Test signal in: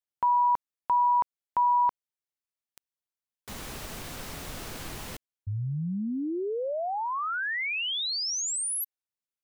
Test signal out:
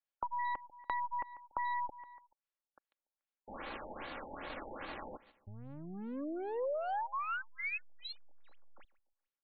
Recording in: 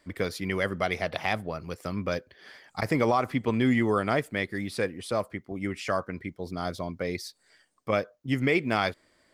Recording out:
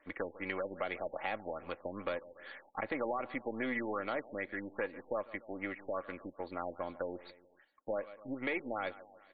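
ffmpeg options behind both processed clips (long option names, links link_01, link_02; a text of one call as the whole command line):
ffmpeg -i in.wav -filter_complex "[0:a]aeval=exprs='if(lt(val(0),0),0.447*val(0),val(0))':channel_layout=same,bass=frequency=250:gain=-15,treble=frequency=4000:gain=-7,aecho=1:1:3.6:0.4,volume=19.5dB,asoftclip=hard,volume=-19.5dB,aecho=1:1:144|288|432:0.0891|0.0348|0.0136,acrossover=split=560|2400[link_01][link_02][link_03];[link_01]acompressor=threshold=-48dB:ratio=2[link_04];[link_02]acompressor=threshold=-41dB:ratio=4[link_05];[link_03]acompressor=threshold=-53dB:ratio=3[link_06];[link_04][link_05][link_06]amix=inputs=3:normalize=0,afftfilt=real='re*lt(b*sr/1024,890*pow(4700/890,0.5+0.5*sin(2*PI*2.5*pts/sr)))':imag='im*lt(b*sr/1024,890*pow(4700/890,0.5+0.5*sin(2*PI*2.5*pts/sr)))':win_size=1024:overlap=0.75,volume=2.5dB" out.wav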